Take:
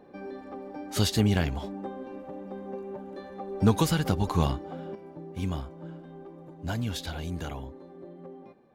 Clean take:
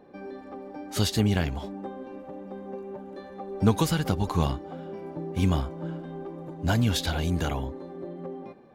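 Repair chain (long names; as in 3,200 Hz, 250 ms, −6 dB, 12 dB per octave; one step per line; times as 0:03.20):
clipped peaks rebuilt −11.5 dBFS
level 0 dB, from 0:04.95 +7.5 dB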